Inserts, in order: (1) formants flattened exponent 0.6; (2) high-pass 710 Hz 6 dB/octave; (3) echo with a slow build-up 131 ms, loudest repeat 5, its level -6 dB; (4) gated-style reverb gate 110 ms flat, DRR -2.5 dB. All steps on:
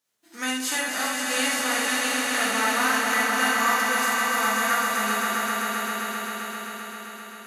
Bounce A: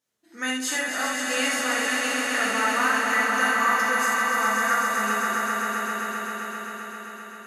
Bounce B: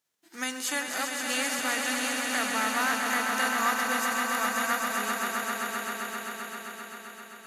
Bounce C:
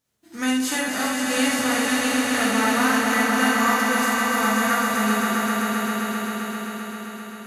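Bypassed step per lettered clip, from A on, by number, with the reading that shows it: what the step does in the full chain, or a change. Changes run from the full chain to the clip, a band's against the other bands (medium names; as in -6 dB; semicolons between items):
1, 4 kHz band -3.0 dB; 4, echo-to-direct 9.0 dB to 3.5 dB; 2, 250 Hz band +9.0 dB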